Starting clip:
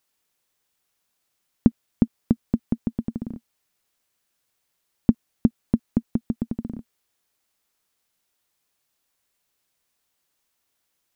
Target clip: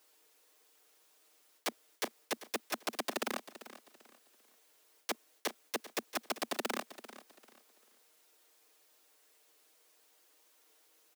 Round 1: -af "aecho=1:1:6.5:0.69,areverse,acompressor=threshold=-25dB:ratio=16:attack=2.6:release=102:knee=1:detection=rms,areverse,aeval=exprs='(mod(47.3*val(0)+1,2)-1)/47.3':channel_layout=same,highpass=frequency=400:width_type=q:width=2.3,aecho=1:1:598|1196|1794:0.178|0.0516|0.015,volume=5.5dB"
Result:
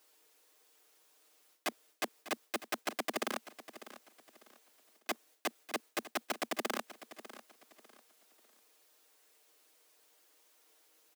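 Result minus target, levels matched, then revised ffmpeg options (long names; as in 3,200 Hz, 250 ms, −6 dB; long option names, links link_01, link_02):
echo 206 ms late; downward compressor: peak gain reduction +6.5 dB
-af "aecho=1:1:6.5:0.69,areverse,acompressor=threshold=-18dB:ratio=16:attack=2.6:release=102:knee=1:detection=rms,areverse,aeval=exprs='(mod(47.3*val(0)+1,2)-1)/47.3':channel_layout=same,highpass=frequency=400:width_type=q:width=2.3,aecho=1:1:392|784|1176:0.178|0.0516|0.015,volume=5.5dB"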